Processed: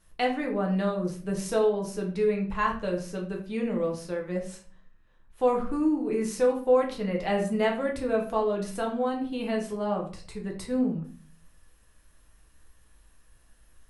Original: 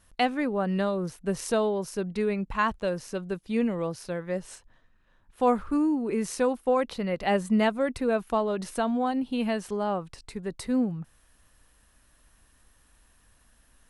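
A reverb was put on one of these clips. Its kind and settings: simulated room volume 36 m³, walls mixed, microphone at 0.59 m; trim -4.5 dB

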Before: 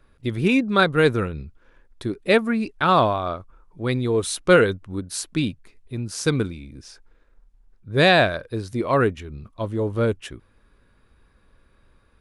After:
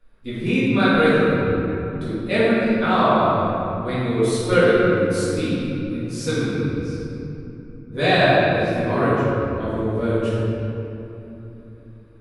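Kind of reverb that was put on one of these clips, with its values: simulated room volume 150 m³, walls hard, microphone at 1.9 m; trim -11.5 dB

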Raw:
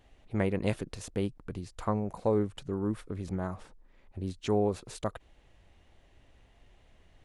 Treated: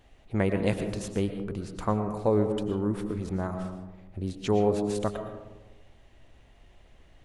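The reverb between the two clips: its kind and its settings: algorithmic reverb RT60 1.2 s, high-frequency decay 0.25×, pre-delay 75 ms, DRR 7 dB; trim +3 dB

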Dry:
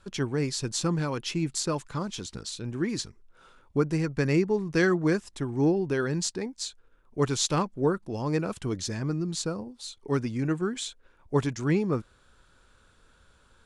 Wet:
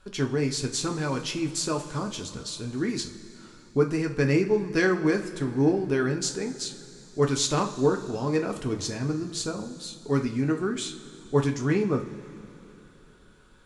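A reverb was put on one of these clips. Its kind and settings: two-slope reverb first 0.31 s, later 3.4 s, from -18 dB, DRR 2.5 dB

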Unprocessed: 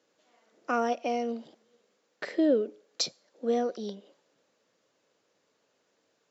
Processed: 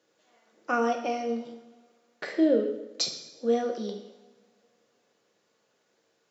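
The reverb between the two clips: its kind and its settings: two-slope reverb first 0.83 s, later 3 s, from -26 dB, DRR 3 dB

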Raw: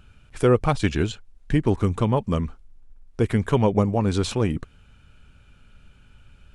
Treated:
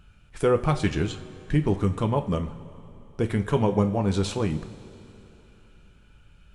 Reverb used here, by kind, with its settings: two-slope reverb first 0.31 s, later 3.2 s, from -17 dB, DRR 6.5 dB; trim -3.5 dB

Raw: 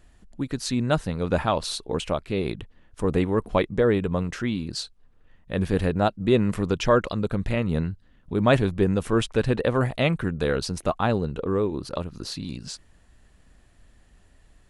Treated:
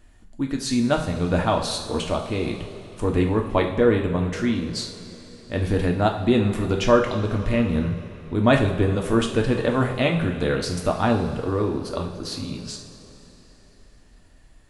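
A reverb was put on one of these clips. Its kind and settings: two-slope reverb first 0.51 s, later 3.8 s, from -15 dB, DRR 1.5 dB

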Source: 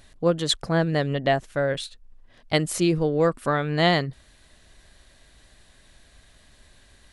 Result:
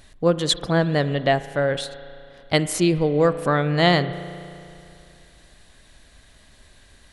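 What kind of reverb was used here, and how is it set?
spring tank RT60 2.6 s, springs 34 ms, chirp 40 ms, DRR 13 dB; trim +2.5 dB

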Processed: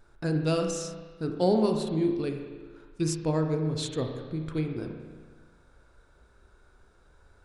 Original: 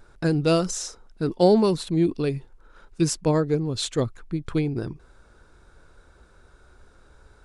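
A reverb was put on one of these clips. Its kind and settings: spring tank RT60 1.5 s, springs 32/38 ms, chirp 35 ms, DRR 3.5 dB; trim -7 dB

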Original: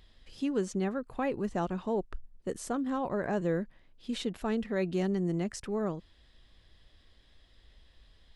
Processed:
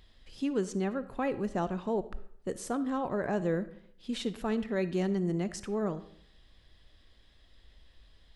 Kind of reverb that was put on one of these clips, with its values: algorithmic reverb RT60 0.67 s, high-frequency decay 0.7×, pre-delay 15 ms, DRR 14 dB

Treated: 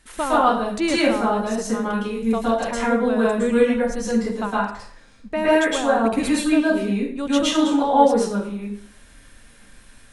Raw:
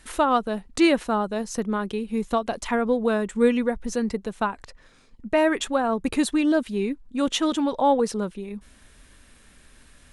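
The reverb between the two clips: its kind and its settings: plate-style reverb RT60 0.55 s, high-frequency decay 0.8×, pre-delay 100 ms, DRR -8 dB; trim -4.5 dB

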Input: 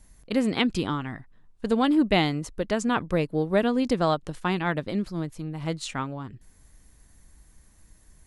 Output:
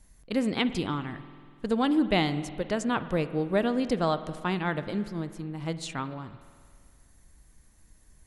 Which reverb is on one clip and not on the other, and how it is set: spring tank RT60 2 s, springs 48 ms, chirp 25 ms, DRR 12.5 dB; trim -3 dB

